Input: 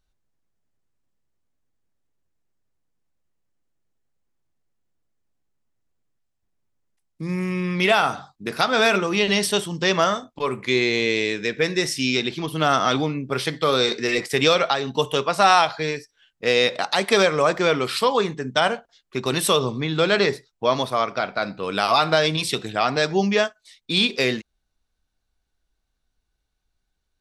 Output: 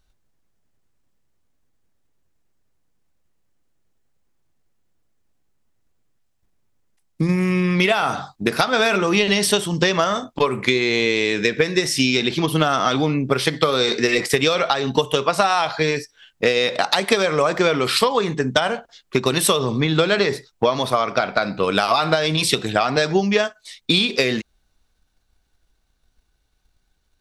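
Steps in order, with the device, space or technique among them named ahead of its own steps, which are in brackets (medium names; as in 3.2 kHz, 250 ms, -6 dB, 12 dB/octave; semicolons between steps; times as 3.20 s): drum-bus smash (transient shaper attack +7 dB, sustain +3 dB; compression 6:1, threshold -21 dBFS, peak gain reduction 13 dB; saturation -8.5 dBFS, distortion -26 dB); trim +7 dB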